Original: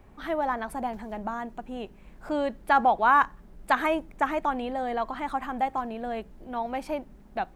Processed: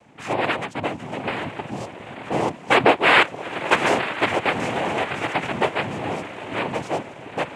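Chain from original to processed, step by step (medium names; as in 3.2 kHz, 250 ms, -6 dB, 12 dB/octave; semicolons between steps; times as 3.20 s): echo that smears into a reverb 904 ms, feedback 44%, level -10 dB; noise-vocoded speech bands 4; trim +5 dB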